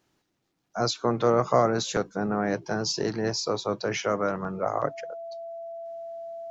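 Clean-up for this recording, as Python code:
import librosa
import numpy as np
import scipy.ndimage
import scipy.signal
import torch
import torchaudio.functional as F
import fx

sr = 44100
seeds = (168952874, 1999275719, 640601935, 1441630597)

y = fx.notch(x, sr, hz=670.0, q=30.0)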